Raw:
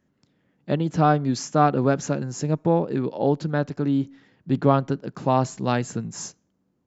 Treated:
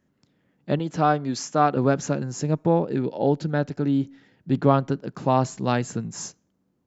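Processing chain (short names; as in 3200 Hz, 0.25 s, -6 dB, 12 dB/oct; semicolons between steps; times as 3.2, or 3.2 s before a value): 0.79–1.77 low shelf 220 Hz -8.5 dB; 2.85–4.52 notch 1100 Hz, Q 5.7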